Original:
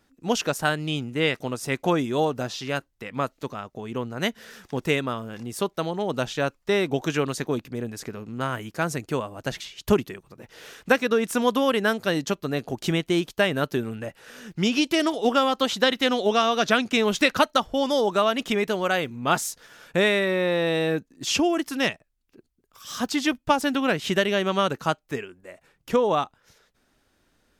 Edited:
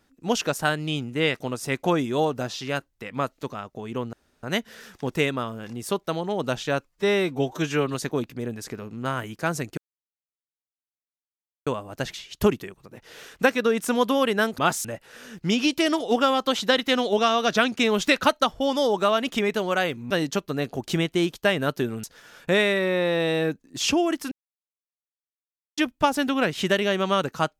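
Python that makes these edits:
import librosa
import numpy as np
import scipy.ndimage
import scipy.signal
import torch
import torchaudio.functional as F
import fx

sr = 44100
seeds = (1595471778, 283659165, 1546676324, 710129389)

y = fx.edit(x, sr, fx.insert_room_tone(at_s=4.13, length_s=0.3),
    fx.stretch_span(start_s=6.61, length_s=0.69, factor=1.5),
    fx.insert_silence(at_s=9.13, length_s=1.89),
    fx.swap(start_s=12.05, length_s=1.93, other_s=19.24, other_length_s=0.26),
    fx.silence(start_s=21.78, length_s=1.46), tone=tone)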